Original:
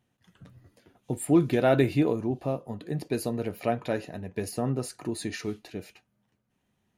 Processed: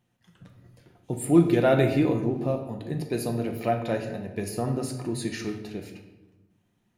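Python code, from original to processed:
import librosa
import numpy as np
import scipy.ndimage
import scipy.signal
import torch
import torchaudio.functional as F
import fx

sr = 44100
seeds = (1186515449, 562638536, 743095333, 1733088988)

y = fx.room_shoebox(x, sr, seeds[0], volume_m3=470.0, walls='mixed', distance_m=0.85)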